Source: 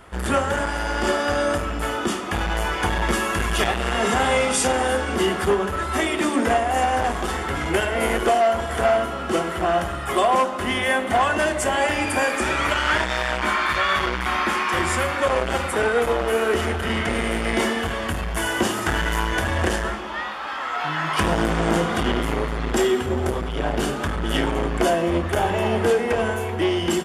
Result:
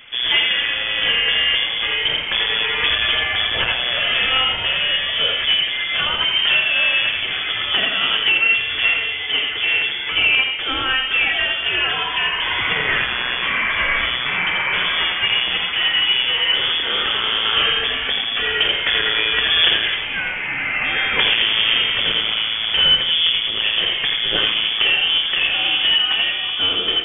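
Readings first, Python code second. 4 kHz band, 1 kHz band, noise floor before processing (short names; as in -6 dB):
+16.5 dB, -6.0 dB, -28 dBFS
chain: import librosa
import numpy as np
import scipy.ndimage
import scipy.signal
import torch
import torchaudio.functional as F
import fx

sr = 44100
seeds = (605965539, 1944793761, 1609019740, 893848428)

y = fx.rider(x, sr, range_db=10, speed_s=2.0)
y = y + 10.0 ** (-5.5 / 20.0) * np.pad(y, (int(84 * sr / 1000.0), 0))[:len(y)]
y = fx.freq_invert(y, sr, carrier_hz=3400)
y = y * 10.0 ** (1.5 / 20.0)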